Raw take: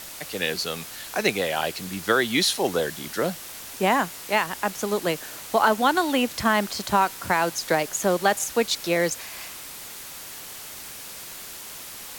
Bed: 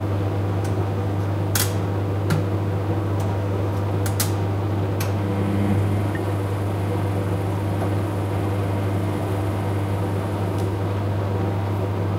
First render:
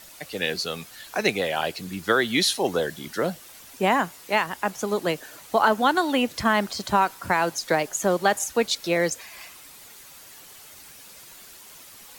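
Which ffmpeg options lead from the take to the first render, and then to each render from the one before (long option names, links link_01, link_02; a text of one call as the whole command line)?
ffmpeg -i in.wav -af "afftdn=noise_reduction=9:noise_floor=-39" out.wav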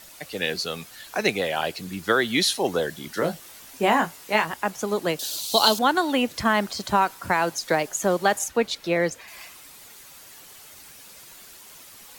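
ffmpeg -i in.wav -filter_complex "[0:a]asettb=1/sr,asplit=3[link_01][link_02][link_03];[link_01]atrim=end=3.154[link_04];[link_02]atrim=start=3.15:end=4.54,asetpts=PTS-STARTPTS,afade=type=in:duration=0.004:curve=qsin,afade=type=out:start_time=1.386:duration=0.004:curve=qsin,asplit=2[link_05][link_06];[link_06]adelay=19,volume=-5.5dB[link_07];[link_05][link_07]amix=inputs=2:normalize=0,atrim=end_sample=61299[link_08];[link_03]atrim=start=4.536[link_09];[link_04][link_08]acrossfade=duration=0.004:curve1=hsin:curve2=qsin[link_10];[link_10][link_09]acrossfade=duration=0.004:curve1=qsin:curve2=hsin,asettb=1/sr,asplit=3[link_11][link_12][link_13];[link_11]atrim=end=5.194[link_14];[link_12]atrim=start=5.19:end=5.79,asetpts=PTS-STARTPTS,afade=type=in:duration=0.004:curve=qsin,afade=type=out:start_time=0.596:duration=0.004:curve=qsin,highshelf=frequency=2700:width_type=q:width=3:gain=13.5[link_15];[link_13]atrim=start=5.786[link_16];[link_14][link_15]acrossfade=duration=0.004:curve1=hsin:curve2=qsin[link_17];[link_17][link_16]acrossfade=duration=0.004:curve1=qsin:curve2=hsin,asettb=1/sr,asplit=3[link_18][link_19][link_20];[link_18]atrim=end=8.484[link_21];[link_19]atrim=start=8.48:end=9.28,asetpts=PTS-STARTPTS,afade=type=in:duration=0.004:curve=qsin,afade=type=out:start_time=0.796:duration=0.004:curve=qsin,bass=frequency=250:gain=1,treble=frequency=4000:gain=-8[link_22];[link_20]atrim=start=9.276[link_23];[link_21][link_22]acrossfade=duration=0.004:curve1=hsin:curve2=qsin[link_24];[link_24][link_23]acrossfade=duration=0.004:curve1=qsin:curve2=hsin" out.wav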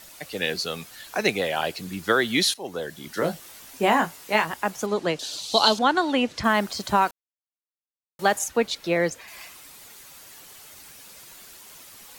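ffmpeg -i in.wav -filter_complex "[0:a]asettb=1/sr,asplit=3[link_01][link_02][link_03];[link_01]atrim=end=4.864[link_04];[link_02]atrim=start=4.86:end=6.44,asetpts=PTS-STARTPTS,afade=type=in:duration=0.004:curve=qsin,afade=type=out:start_time=1.576:duration=0.004:curve=qsin,lowpass=6400[link_05];[link_03]atrim=start=6.436[link_06];[link_04][link_05]acrossfade=duration=0.004:curve1=hsin:curve2=qsin[link_07];[link_07][link_06]acrossfade=duration=0.004:curve1=qsin:curve2=hsin,asplit=4[link_08][link_09][link_10][link_11];[link_08]atrim=end=2.54,asetpts=PTS-STARTPTS,afade=type=out:start_time=2.536:duration=0.004:curve=hsin:silence=0.177828[link_12];[link_09]atrim=start=2.54:end=7.11,asetpts=PTS-STARTPTS,afade=type=in:duration=0.72:silence=0.177828,afade=type=out:start_time=4.566:duration=0.004:curve=hsin[link_13];[link_10]atrim=start=7.11:end=8.19,asetpts=PTS-STARTPTS,volume=0[link_14];[link_11]atrim=start=8.19,asetpts=PTS-STARTPTS,afade=type=in:duration=0.004:curve=hsin[link_15];[link_12][link_13][link_14][link_15]concat=n=4:v=0:a=1" out.wav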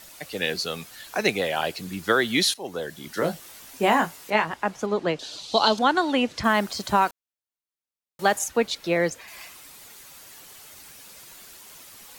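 ffmpeg -i in.wav -filter_complex "[0:a]asettb=1/sr,asplit=3[link_01][link_02][link_03];[link_01]atrim=end=4.304[link_04];[link_02]atrim=start=4.3:end=5.78,asetpts=PTS-STARTPTS,afade=type=in:duration=0.004:curve=qsin,afade=type=out:start_time=1.476:duration=0.004:curve=qsin,aemphasis=mode=reproduction:type=50fm[link_05];[link_03]atrim=start=5.776[link_06];[link_04][link_05]acrossfade=duration=0.004:curve1=hsin:curve2=qsin[link_07];[link_07][link_06]acrossfade=duration=0.004:curve1=qsin:curve2=hsin" out.wav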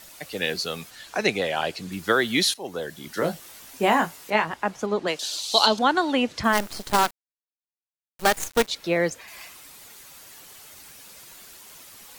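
ffmpeg -i in.wav -filter_complex "[0:a]asettb=1/sr,asplit=3[link_01][link_02][link_03];[link_01]atrim=end=0.904[link_04];[link_02]atrim=start=0.9:end=1.92,asetpts=PTS-STARTPTS,afade=type=in:duration=0.004:curve=qsin,afade=type=out:start_time=1.016:duration=0.004:curve=qsin,acrossover=split=9600[link_05][link_06];[link_06]acompressor=threshold=-59dB:ratio=4:attack=1:release=60[link_07];[link_05][link_07]amix=inputs=2:normalize=0[link_08];[link_03]atrim=start=1.916[link_09];[link_04][link_08]acrossfade=duration=0.004:curve1=hsin:curve2=qsin[link_10];[link_10][link_09]acrossfade=duration=0.004:curve1=qsin:curve2=hsin,asplit=3[link_11][link_12][link_13];[link_11]afade=type=out:start_time=5.06:duration=0.02[link_14];[link_12]aemphasis=mode=production:type=riaa,afade=type=in:start_time=5.06:duration=0.02,afade=type=out:start_time=5.65:duration=0.02[link_15];[link_13]afade=type=in:start_time=5.65:duration=0.02[link_16];[link_14][link_15][link_16]amix=inputs=3:normalize=0,asplit=3[link_17][link_18][link_19];[link_17]afade=type=out:start_time=6.52:duration=0.02[link_20];[link_18]acrusher=bits=4:dc=4:mix=0:aa=0.000001,afade=type=in:start_time=6.52:duration=0.02,afade=type=out:start_time=8.67:duration=0.02[link_21];[link_19]afade=type=in:start_time=8.67:duration=0.02[link_22];[link_20][link_21][link_22]amix=inputs=3:normalize=0" out.wav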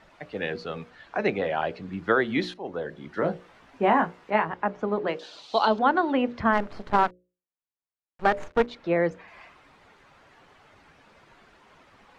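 ffmpeg -i in.wav -af "lowpass=1700,bandreject=frequency=60:width_type=h:width=6,bandreject=frequency=120:width_type=h:width=6,bandreject=frequency=180:width_type=h:width=6,bandreject=frequency=240:width_type=h:width=6,bandreject=frequency=300:width_type=h:width=6,bandreject=frequency=360:width_type=h:width=6,bandreject=frequency=420:width_type=h:width=6,bandreject=frequency=480:width_type=h:width=6,bandreject=frequency=540:width_type=h:width=6,bandreject=frequency=600:width_type=h:width=6" out.wav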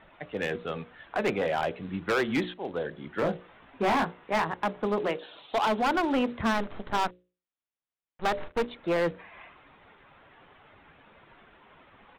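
ffmpeg -i in.wav -af "aresample=8000,acrusher=bits=5:mode=log:mix=0:aa=0.000001,aresample=44100,volume=21.5dB,asoftclip=hard,volume=-21.5dB" out.wav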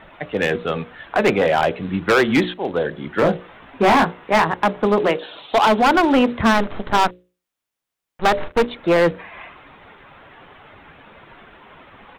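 ffmpeg -i in.wav -af "volume=11dB" out.wav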